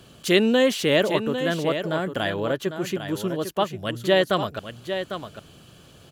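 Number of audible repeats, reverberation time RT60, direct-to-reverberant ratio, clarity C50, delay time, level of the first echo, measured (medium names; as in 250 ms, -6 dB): 1, no reverb, no reverb, no reverb, 801 ms, -9.0 dB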